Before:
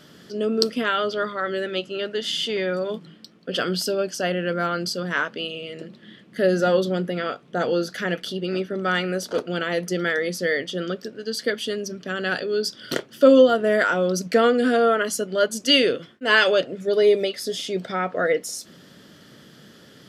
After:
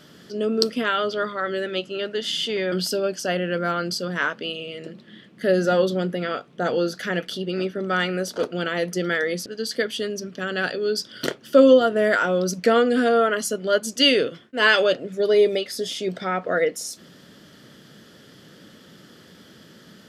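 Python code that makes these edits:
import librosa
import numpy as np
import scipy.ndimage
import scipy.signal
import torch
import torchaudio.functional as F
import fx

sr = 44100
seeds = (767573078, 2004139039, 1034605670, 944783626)

y = fx.edit(x, sr, fx.cut(start_s=2.72, length_s=0.95),
    fx.cut(start_s=10.41, length_s=0.73), tone=tone)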